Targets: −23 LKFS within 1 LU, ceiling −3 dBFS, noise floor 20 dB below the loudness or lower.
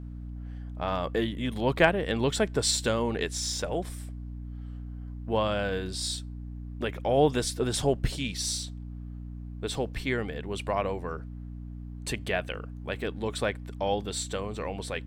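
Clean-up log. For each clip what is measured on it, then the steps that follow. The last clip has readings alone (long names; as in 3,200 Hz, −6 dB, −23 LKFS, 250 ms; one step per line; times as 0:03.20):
mains hum 60 Hz; hum harmonics up to 300 Hz; level of the hum −36 dBFS; integrated loudness −29.5 LKFS; sample peak −7.0 dBFS; target loudness −23.0 LKFS
→ hum removal 60 Hz, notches 5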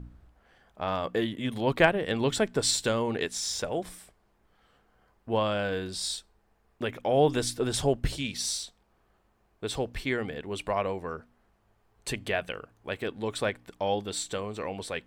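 mains hum none found; integrated loudness −30.0 LKFS; sample peak −7.5 dBFS; target loudness −23.0 LKFS
→ level +7 dB
brickwall limiter −3 dBFS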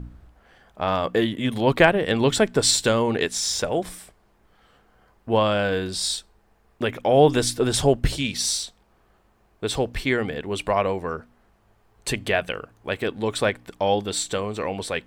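integrated loudness −23.0 LKFS; sample peak −3.0 dBFS; background noise floor −62 dBFS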